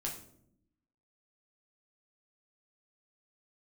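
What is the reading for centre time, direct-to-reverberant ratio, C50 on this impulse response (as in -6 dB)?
25 ms, -2.0 dB, 7.5 dB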